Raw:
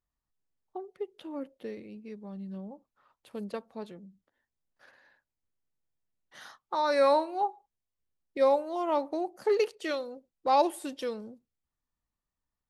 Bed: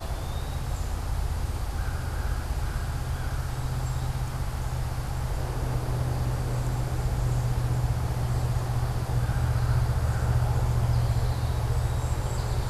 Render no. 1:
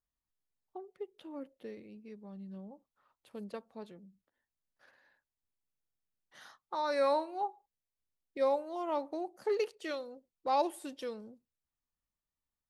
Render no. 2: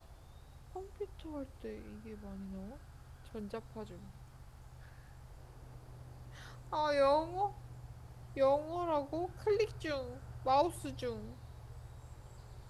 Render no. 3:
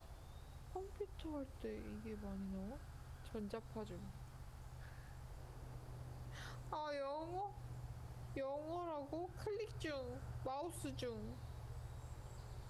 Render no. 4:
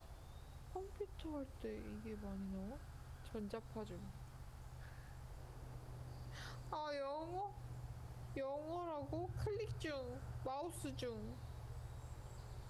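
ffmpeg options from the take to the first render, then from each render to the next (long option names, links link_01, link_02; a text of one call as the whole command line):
ffmpeg -i in.wav -af "volume=-6dB" out.wav
ffmpeg -i in.wav -i bed.wav -filter_complex "[1:a]volume=-24.5dB[link_01];[0:a][link_01]amix=inputs=2:normalize=0" out.wav
ffmpeg -i in.wav -af "alimiter=level_in=5.5dB:limit=-24dB:level=0:latency=1:release=38,volume=-5.5dB,acompressor=threshold=-42dB:ratio=6" out.wav
ffmpeg -i in.wav -filter_complex "[0:a]asettb=1/sr,asplit=3[link_01][link_02][link_03];[link_01]atrim=end=6.074[link_04];[link_02]atrim=start=6.07:end=6.99,asetpts=PTS-STARTPTS,afade=type=in:duration=0.004:curve=qsin,afade=type=out:start_time=0.916:duration=0.004:curve=qsin,equalizer=frequency=4700:width_type=o:width=0.21:gain=6.5[link_05];[link_03]atrim=start=6.986[link_06];[link_04][link_05]acrossfade=duration=0.004:curve1=hsin:curve2=qsin[link_07];[link_07][link_06]acrossfade=duration=0.004:curve1=qsin:curve2=hsin,asettb=1/sr,asplit=3[link_08][link_09][link_10];[link_08]atrim=end=9.024[link_11];[link_09]atrim=start=9.02:end=9.74,asetpts=PTS-STARTPTS,afade=type=in:duration=0.004:curve=qsin,afade=type=out:start_time=0.716:duration=0.004:curve=qsin,equalizer=frequency=96:width=1.5:gain=12.5[link_12];[link_10]atrim=start=9.736[link_13];[link_11][link_12]acrossfade=duration=0.004:curve1=hsin:curve2=qsin[link_14];[link_14][link_13]acrossfade=duration=0.004:curve1=qsin:curve2=hsin" out.wav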